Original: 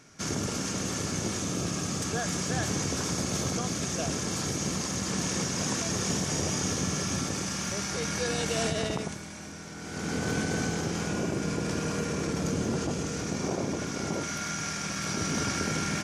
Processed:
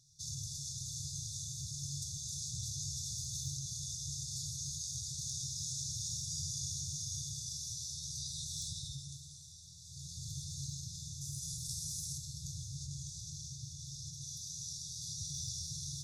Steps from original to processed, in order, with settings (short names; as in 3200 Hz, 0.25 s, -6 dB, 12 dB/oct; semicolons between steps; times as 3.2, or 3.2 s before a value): 11.21–12.18 bell 12000 Hz +14.5 dB 1.3 oct; resonator 140 Hz, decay 1.1 s, harmonics all, mix 80%; wavefolder -31 dBFS; brick-wall FIR band-stop 150–3400 Hz; tape echo 0.37 s, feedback 90%, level -14 dB, low-pass 4300 Hz; gain +5 dB